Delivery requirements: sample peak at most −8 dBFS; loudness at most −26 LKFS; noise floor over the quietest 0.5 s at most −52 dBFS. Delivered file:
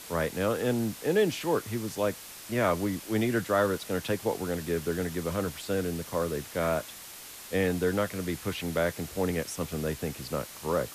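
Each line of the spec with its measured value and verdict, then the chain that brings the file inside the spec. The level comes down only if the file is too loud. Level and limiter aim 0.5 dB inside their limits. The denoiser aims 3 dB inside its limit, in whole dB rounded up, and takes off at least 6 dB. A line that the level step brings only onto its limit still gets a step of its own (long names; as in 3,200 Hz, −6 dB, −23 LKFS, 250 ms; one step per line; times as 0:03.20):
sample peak −12.5 dBFS: in spec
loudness −30.0 LKFS: in spec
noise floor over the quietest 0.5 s −45 dBFS: out of spec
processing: broadband denoise 10 dB, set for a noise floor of −45 dBFS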